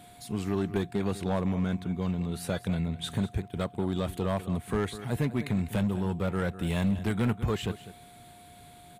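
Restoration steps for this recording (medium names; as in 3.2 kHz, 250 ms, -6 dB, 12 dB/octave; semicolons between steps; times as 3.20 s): clip repair -21 dBFS; band-stop 710 Hz, Q 30; inverse comb 200 ms -15.5 dB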